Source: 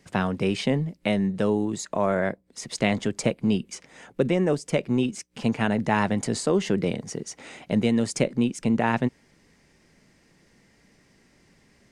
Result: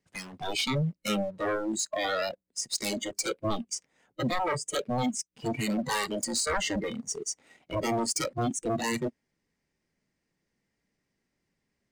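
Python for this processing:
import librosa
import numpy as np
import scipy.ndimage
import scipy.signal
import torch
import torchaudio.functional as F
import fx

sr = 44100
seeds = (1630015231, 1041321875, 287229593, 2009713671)

y = 10.0 ** (-24.5 / 20.0) * (np.abs((x / 10.0 ** (-24.5 / 20.0) + 3.0) % 4.0 - 2.0) - 1.0)
y = fx.noise_reduce_blind(y, sr, reduce_db=20)
y = fx.leveller(y, sr, passes=1)
y = y * librosa.db_to_amplitude(1.5)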